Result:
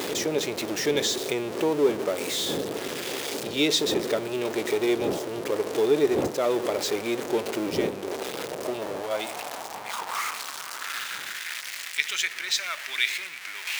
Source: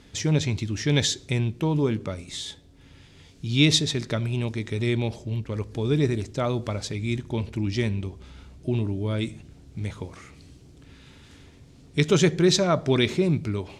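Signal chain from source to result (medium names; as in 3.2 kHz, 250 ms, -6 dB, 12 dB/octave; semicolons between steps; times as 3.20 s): jump at every zero crossing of -23.5 dBFS; wind noise 130 Hz -20 dBFS; in parallel at +1.5 dB: compression, threshold -22 dBFS, peak gain reduction 19 dB; on the sum: high-pass sweep 420 Hz -> 2 kHz, 8.13–11.87 s; trim -8 dB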